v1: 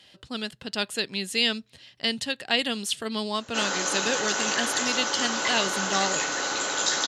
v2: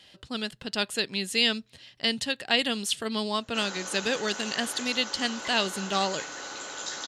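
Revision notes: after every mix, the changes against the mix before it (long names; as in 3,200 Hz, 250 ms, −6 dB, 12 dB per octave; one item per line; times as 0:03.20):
background −10.5 dB
master: remove high-pass filter 56 Hz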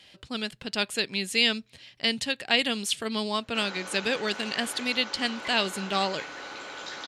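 background: add parametric band 6,900 Hz −14 dB 0.71 octaves
master: add parametric band 2,300 Hz +7 dB 0.2 octaves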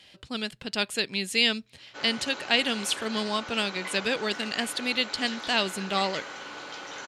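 background: entry −1.60 s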